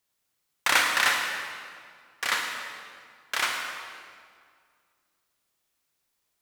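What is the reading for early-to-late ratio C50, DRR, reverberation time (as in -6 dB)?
2.5 dB, 1.0 dB, 2.0 s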